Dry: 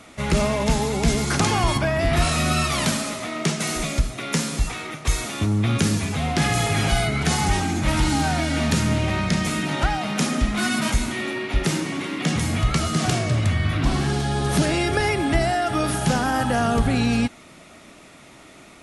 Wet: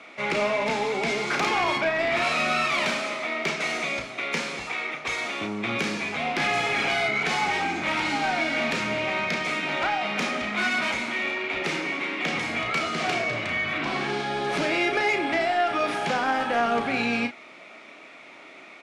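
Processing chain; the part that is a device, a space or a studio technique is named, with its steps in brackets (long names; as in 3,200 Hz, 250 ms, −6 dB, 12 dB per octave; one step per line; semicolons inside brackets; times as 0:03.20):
intercom (band-pass filter 370–3,800 Hz; parametric band 2,300 Hz +8.5 dB 0.26 octaves; soft clipping −17.5 dBFS, distortion −19 dB; double-tracking delay 34 ms −7.5 dB)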